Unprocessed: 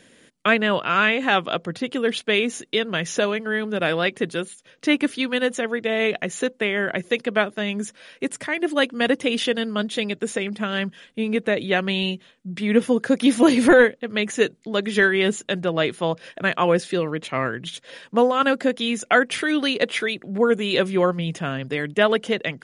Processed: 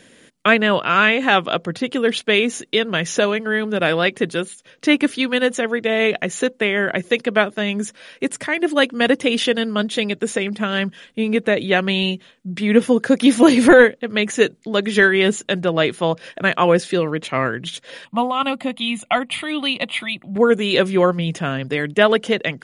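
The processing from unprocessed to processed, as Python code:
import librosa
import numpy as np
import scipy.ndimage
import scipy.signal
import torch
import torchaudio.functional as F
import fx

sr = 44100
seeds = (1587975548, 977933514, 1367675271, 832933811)

y = fx.fixed_phaser(x, sr, hz=1600.0, stages=6, at=(18.05, 20.36))
y = y * librosa.db_to_amplitude(4.0)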